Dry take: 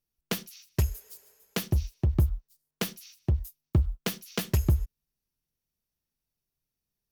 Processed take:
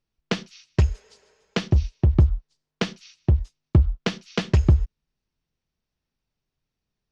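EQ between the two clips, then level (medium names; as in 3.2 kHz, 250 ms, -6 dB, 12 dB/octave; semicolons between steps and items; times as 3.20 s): Bessel low-pass 4 kHz, order 6; +7.0 dB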